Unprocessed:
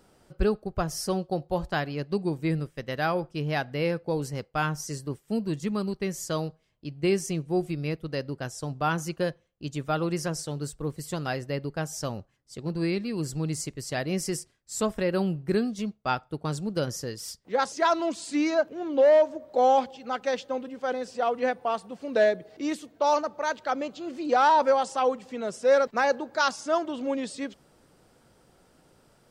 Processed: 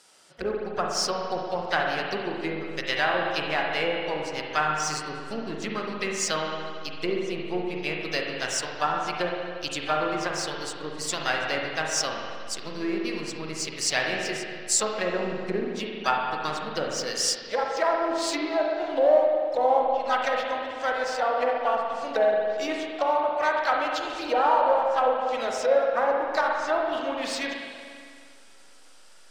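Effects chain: treble ducked by the level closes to 670 Hz, closed at -21 dBFS; weighting filter ITU-R 468; in parallel at -4.5 dB: backlash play -33 dBFS; on the sum: harmoniser +4 st -12 dB; spring tank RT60 2.1 s, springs 39/57 ms, chirp 35 ms, DRR -0.5 dB

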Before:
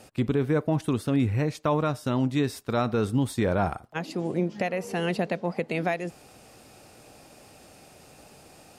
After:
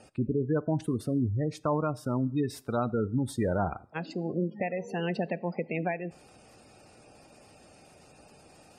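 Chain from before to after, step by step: spectral gate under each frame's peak -20 dB strong; two-slope reverb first 0.56 s, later 2.6 s, from -26 dB, DRR 19.5 dB; gain -3.5 dB

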